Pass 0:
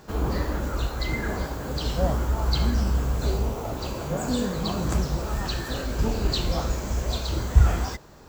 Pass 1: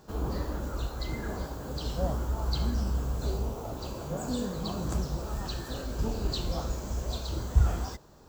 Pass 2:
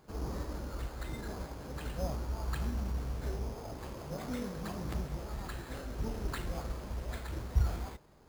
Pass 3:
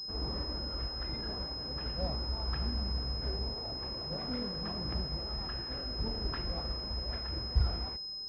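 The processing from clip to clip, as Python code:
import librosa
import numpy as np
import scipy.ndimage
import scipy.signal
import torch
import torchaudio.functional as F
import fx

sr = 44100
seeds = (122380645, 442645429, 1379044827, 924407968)

y1 = fx.peak_eq(x, sr, hz=2100.0, db=-7.0, octaves=0.86)
y1 = y1 * 10.0 ** (-6.0 / 20.0)
y2 = fx.sample_hold(y1, sr, seeds[0], rate_hz=5700.0, jitter_pct=0)
y2 = y2 * 10.0 ** (-6.0 / 20.0)
y3 = fx.pwm(y2, sr, carrier_hz=5100.0)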